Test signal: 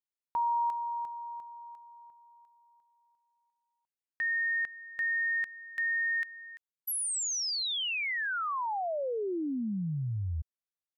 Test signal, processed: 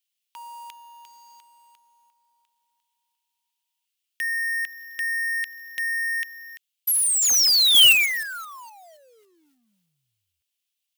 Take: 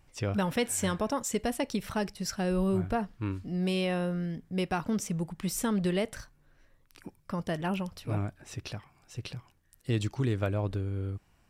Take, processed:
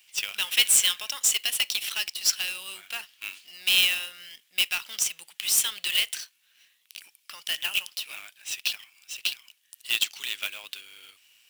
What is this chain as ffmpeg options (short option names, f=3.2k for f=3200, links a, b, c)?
-af "highpass=f=2.9k:t=q:w=3.3,acrusher=bits=2:mode=log:mix=0:aa=0.000001,highshelf=f=5.8k:g=6.5,volume=7.5dB"